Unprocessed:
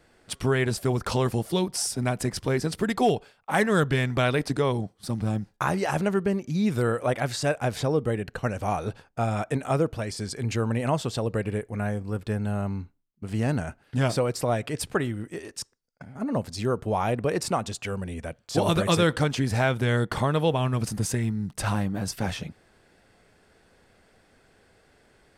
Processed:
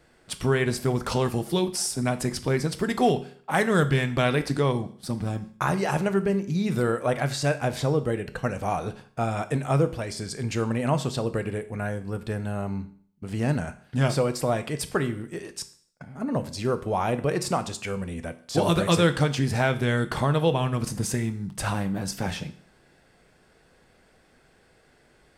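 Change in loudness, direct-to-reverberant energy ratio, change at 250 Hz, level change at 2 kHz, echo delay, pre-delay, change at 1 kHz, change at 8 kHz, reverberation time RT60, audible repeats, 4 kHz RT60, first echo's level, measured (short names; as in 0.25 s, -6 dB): +0.5 dB, 9.5 dB, +0.5 dB, +0.5 dB, none, 5 ms, +0.5 dB, +0.5 dB, 0.55 s, none, 0.55 s, none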